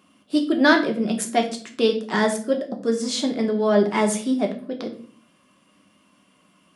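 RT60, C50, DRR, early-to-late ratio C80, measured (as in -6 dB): 0.45 s, 11.0 dB, 2.5 dB, 15.0 dB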